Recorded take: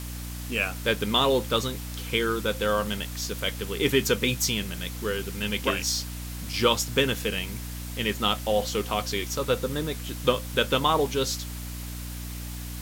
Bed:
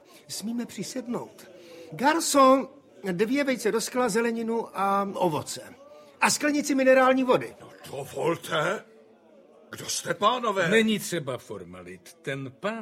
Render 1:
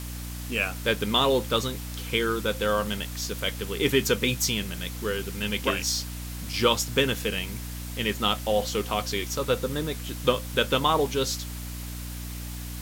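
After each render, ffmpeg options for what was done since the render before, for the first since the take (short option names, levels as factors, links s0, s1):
-af anull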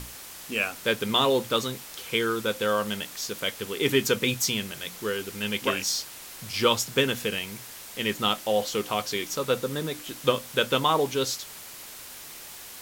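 -af "bandreject=f=60:t=h:w=6,bandreject=f=120:t=h:w=6,bandreject=f=180:t=h:w=6,bandreject=f=240:t=h:w=6,bandreject=f=300:t=h:w=6"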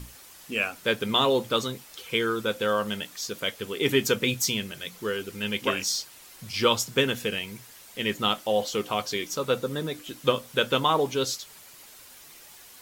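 -af "afftdn=nr=8:nf=-43"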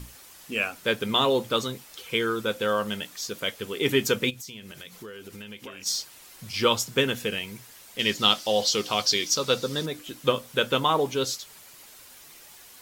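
-filter_complex "[0:a]asplit=3[s0][s1][s2];[s0]afade=t=out:st=4.29:d=0.02[s3];[s1]acompressor=threshold=0.0126:ratio=6:attack=3.2:release=140:knee=1:detection=peak,afade=t=in:st=4.29:d=0.02,afade=t=out:st=5.85:d=0.02[s4];[s2]afade=t=in:st=5.85:d=0.02[s5];[s3][s4][s5]amix=inputs=3:normalize=0,asettb=1/sr,asplit=3[s6][s7][s8];[s6]atrim=end=7.994[s9];[s7]atrim=start=7.99:end=9.86,asetpts=PTS-STARTPTS,afade=t=in:d=0.004:c=qsin,afade=t=out:st=1.866:d=0.004:c=qsin,equalizer=f=4900:t=o:w=1.1:g=14[s10];[s8]atrim=start=9.856[s11];[s9][s10]acrossfade=d=0.004:c1=hsin:c2=qsin[s12];[s12][s11]acrossfade=d=0.004:c1=qsin:c2=hsin"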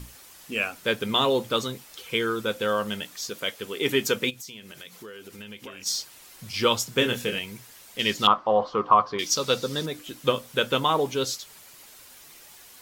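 -filter_complex "[0:a]asettb=1/sr,asplit=3[s0][s1][s2];[s0]atrim=end=3.304[s3];[s1]atrim=start=3.3:end=5.39,asetpts=PTS-STARTPTS,afade=t=in:d=0.004:c=qsin,afade=t=out:st=2.086:d=0.004:c=qsin,lowshelf=f=120:g=-10[s4];[s2]atrim=start=5.386[s5];[s3][s4]acrossfade=d=0.004:c1=hsin:c2=qsin[s6];[s6][s5]acrossfade=d=0.004:c1=qsin:c2=hsin,asettb=1/sr,asplit=3[s7][s8][s9];[s7]atrim=end=6.994[s10];[s8]atrim=start=6.99:end=7.39,asetpts=PTS-STARTPTS,afade=t=in:d=0.004:c=qsin,afade=t=out:st=0.396:d=0.004:c=qsin,asplit=2[s11][s12];[s12]adelay=25,volume=0.562[s13];[s11][s13]amix=inputs=2:normalize=0,atrim=end_sample=17640[s14];[s9]atrim=start=7.386[s15];[s10][s14]acrossfade=d=0.004:c1=hsin:c2=qsin[s16];[s16][s15]acrossfade=d=0.004:c1=qsin:c2=hsin,asettb=1/sr,asplit=3[s17][s18][s19];[s17]atrim=end=8.274[s20];[s18]atrim=start=8.27:end=9.19,asetpts=PTS-STARTPTS,afade=t=in:d=0.004:c=qsin,afade=t=out:st=0.916:d=0.004:c=qsin,lowpass=f=1100:t=q:w=7.4[s21];[s19]atrim=start=9.186[s22];[s20][s21]acrossfade=d=0.004:c1=hsin:c2=qsin[s23];[s23][s22]acrossfade=d=0.004:c1=qsin:c2=hsin"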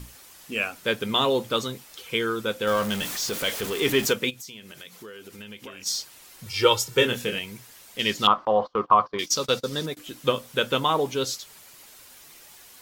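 -filter_complex "[0:a]asettb=1/sr,asplit=3[s0][s1][s2];[s0]atrim=end=2.674[s3];[s1]atrim=start=2.67:end=4.13,asetpts=PTS-STARTPTS,afade=t=in:d=0.004:c=qsin,afade=t=out:st=1.456:d=0.004:c=qsin,aeval=exprs='val(0)+0.5*0.0398*sgn(val(0))':c=same[s4];[s2]atrim=start=4.126[s5];[s3][s4]acrossfade=d=0.004:c1=hsin:c2=qsin[s6];[s6][s5]acrossfade=d=0.004:c1=qsin:c2=hsin,asettb=1/sr,asplit=3[s7][s8][s9];[s7]atrim=end=6.464[s10];[s8]atrim=start=6.46:end=7.05,asetpts=PTS-STARTPTS,afade=t=in:d=0.004:c=qsin,afade=t=out:st=0.586:d=0.004:c=qsin,aecho=1:1:2.2:0.75,atrim=end_sample=26019[s11];[s9]atrim=start=7.046[s12];[s10][s11]acrossfade=d=0.004:c1=hsin:c2=qsin[s13];[s13][s12]acrossfade=d=0.004:c1=qsin:c2=hsin,asettb=1/sr,asplit=3[s14][s15][s16];[s14]atrim=end=8.454[s17];[s15]atrim=start=8.45:end=9.97,asetpts=PTS-STARTPTS,afade=t=in:d=0.004:c=qsin,afade=t=out:st=1.516:d=0.004:c=qsin,agate=range=0.0631:threshold=0.02:ratio=16:release=100:detection=peak[s18];[s16]atrim=start=9.966[s19];[s17][s18]acrossfade=d=0.004:c1=hsin:c2=qsin[s20];[s20][s19]acrossfade=d=0.004:c1=qsin:c2=hsin"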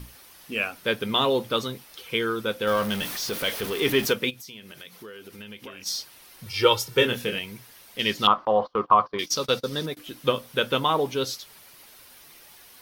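-af "equalizer=f=7300:w=3.3:g=-9.5"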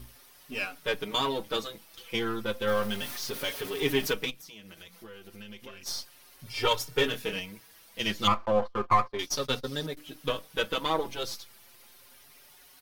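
-filter_complex "[0:a]aeval=exprs='if(lt(val(0),0),0.447*val(0),val(0))':c=same,asplit=2[s0][s1];[s1]adelay=5.2,afreqshift=0.33[s2];[s0][s2]amix=inputs=2:normalize=1"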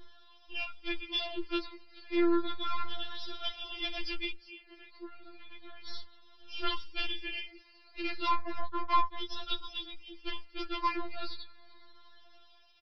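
-af "aresample=11025,asoftclip=type=hard:threshold=0.075,aresample=44100,afftfilt=real='re*4*eq(mod(b,16),0)':imag='im*4*eq(mod(b,16),0)':win_size=2048:overlap=0.75"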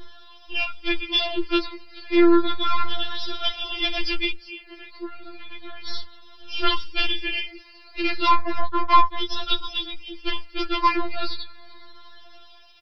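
-af "volume=3.76"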